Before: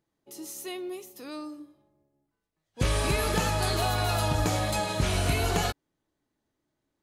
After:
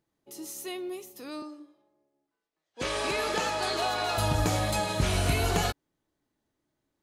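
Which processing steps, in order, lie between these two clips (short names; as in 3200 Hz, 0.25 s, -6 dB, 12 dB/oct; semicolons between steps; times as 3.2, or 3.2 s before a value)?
1.42–4.18 three-band isolator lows -19 dB, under 260 Hz, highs -14 dB, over 8000 Hz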